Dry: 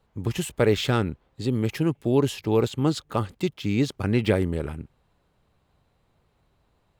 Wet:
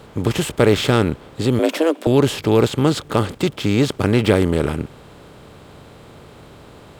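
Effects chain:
compressor on every frequency bin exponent 0.6
0:01.59–0:02.07: frequency shifter +160 Hz
level +4 dB

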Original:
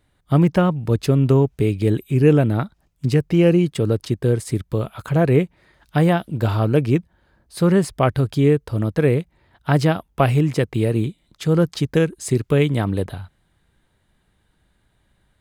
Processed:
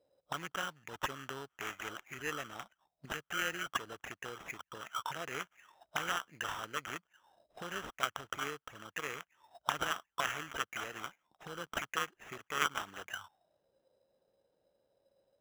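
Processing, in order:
envelope filter 530–3,200 Hz, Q 11, up, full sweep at −17.5 dBFS
sample-rate reduction 4,500 Hz, jitter 0%
high-shelf EQ 7,600 Hz −9.5 dB
level +9.5 dB

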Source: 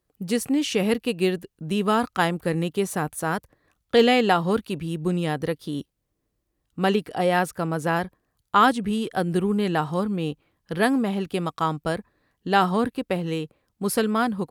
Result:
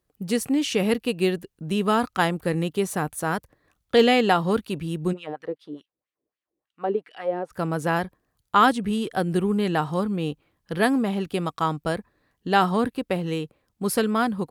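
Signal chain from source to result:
0:05.12–0:07.50: LFO wah 5.8 Hz → 1.9 Hz 370–2,900 Hz, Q 2.2

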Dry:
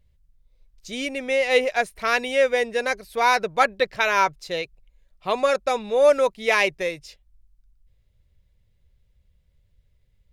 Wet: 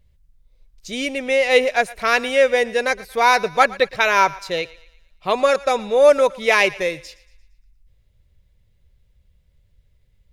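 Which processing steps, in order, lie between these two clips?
feedback echo with a high-pass in the loop 115 ms, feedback 48%, high-pass 650 Hz, level −19 dB
level +4 dB

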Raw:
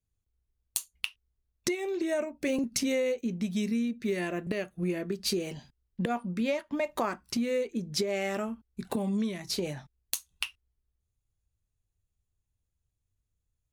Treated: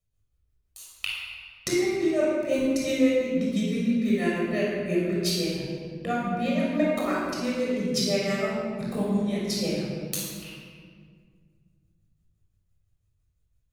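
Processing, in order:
amplitude tremolo 5.9 Hz, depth 91%
rectangular room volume 3,000 cubic metres, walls mixed, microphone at 6.3 metres

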